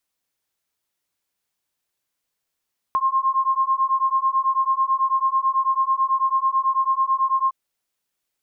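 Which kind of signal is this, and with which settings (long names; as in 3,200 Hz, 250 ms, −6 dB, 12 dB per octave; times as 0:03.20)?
two tones that beat 1,060 Hz, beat 9.1 Hz, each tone −20.5 dBFS 4.56 s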